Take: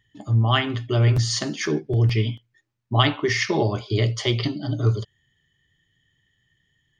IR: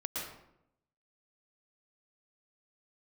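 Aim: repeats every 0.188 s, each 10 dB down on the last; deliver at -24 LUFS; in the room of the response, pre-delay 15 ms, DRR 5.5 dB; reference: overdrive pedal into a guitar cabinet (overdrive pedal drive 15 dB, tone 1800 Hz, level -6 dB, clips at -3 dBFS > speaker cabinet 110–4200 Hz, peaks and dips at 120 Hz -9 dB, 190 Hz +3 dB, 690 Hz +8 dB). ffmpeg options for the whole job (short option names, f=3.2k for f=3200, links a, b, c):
-filter_complex "[0:a]aecho=1:1:188|376|564|752:0.316|0.101|0.0324|0.0104,asplit=2[a][b];[1:a]atrim=start_sample=2205,adelay=15[c];[b][c]afir=irnorm=-1:irlink=0,volume=-8dB[d];[a][d]amix=inputs=2:normalize=0,asplit=2[e][f];[f]highpass=f=720:p=1,volume=15dB,asoftclip=type=tanh:threshold=-3dB[g];[e][g]amix=inputs=2:normalize=0,lowpass=f=1.8k:p=1,volume=-6dB,highpass=110,equalizer=f=120:t=q:w=4:g=-9,equalizer=f=190:t=q:w=4:g=3,equalizer=f=690:t=q:w=4:g=8,lowpass=f=4.2k:w=0.5412,lowpass=f=4.2k:w=1.3066,volume=-4.5dB"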